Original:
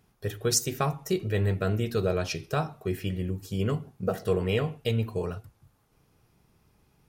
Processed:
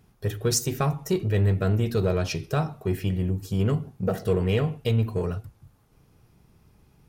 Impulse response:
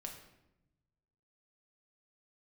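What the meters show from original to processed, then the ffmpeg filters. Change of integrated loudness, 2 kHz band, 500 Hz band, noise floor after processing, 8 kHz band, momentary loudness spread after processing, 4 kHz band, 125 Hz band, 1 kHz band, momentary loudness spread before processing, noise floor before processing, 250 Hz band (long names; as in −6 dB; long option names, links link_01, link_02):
+3.5 dB, 0.0 dB, +1.5 dB, −61 dBFS, 0.0 dB, 6 LU, 0.0 dB, +5.5 dB, +0.5 dB, 7 LU, −68 dBFS, +4.0 dB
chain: -filter_complex "[0:a]lowshelf=frequency=310:gain=6,asplit=2[link_01][link_02];[link_02]asoftclip=type=tanh:threshold=-28dB,volume=-4dB[link_03];[link_01][link_03]amix=inputs=2:normalize=0,volume=-2dB"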